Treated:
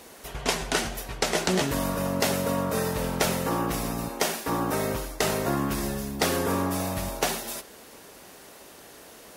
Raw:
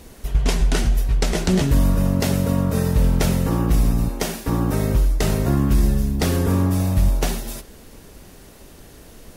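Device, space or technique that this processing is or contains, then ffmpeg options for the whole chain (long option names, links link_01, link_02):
filter by subtraction: -filter_complex "[0:a]asplit=2[link_01][link_02];[link_02]lowpass=810,volume=-1[link_03];[link_01][link_03]amix=inputs=2:normalize=0"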